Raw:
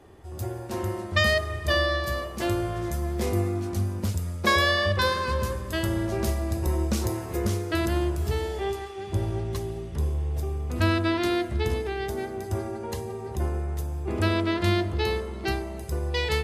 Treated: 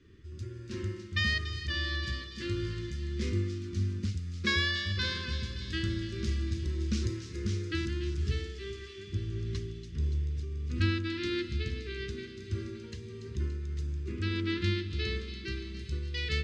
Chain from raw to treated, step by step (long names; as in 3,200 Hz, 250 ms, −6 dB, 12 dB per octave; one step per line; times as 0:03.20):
low-pass filter 6,000 Hz 24 dB per octave
shaped tremolo triangle 1.6 Hz, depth 45%
Butterworth band-reject 740 Hz, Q 0.55
on a send: delay with a high-pass on its return 286 ms, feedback 67%, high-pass 3,000 Hz, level −8 dB
on the sum: level −2.5 dB